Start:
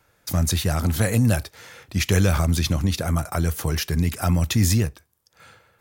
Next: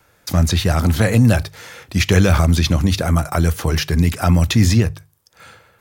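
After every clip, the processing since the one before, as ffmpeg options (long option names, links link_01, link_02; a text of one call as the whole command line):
ffmpeg -i in.wav -filter_complex "[0:a]bandreject=frequency=50:width_type=h:width=6,bandreject=frequency=100:width_type=h:width=6,bandreject=frequency=150:width_type=h:width=6,acrossover=split=890|5800[link_01][link_02][link_03];[link_03]acompressor=threshold=-40dB:ratio=6[link_04];[link_01][link_02][link_04]amix=inputs=3:normalize=0,volume=6.5dB" out.wav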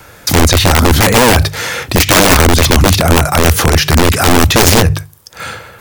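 ffmpeg -i in.wav -af "aeval=exprs='(mod(2.82*val(0)+1,2)-1)/2.82':channel_layout=same,alimiter=level_in=19.5dB:limit=-1dB:release=50:level=0:latency=1,volume=-1dB" out.wav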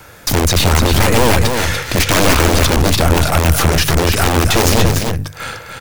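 ffmpeg -i in.wav -af "aeval=exprs='(tanh(3.98*val(0)+0.7)-tanh(0.7))/3.98':channel_layout=same,aecho=1:1:291:0.531,volume=2dB" out.wav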